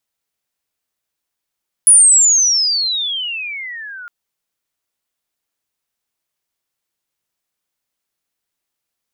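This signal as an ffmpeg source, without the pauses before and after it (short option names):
-f lavfi -i "aevalsrc='pow(10,(-3.5-26*t/2.21)/20)*sin(2*PI*10000*2.21/log(1400/10000)*(exp(log(1400/10000)*t/2.21)-1))':d=2.21:s=44100"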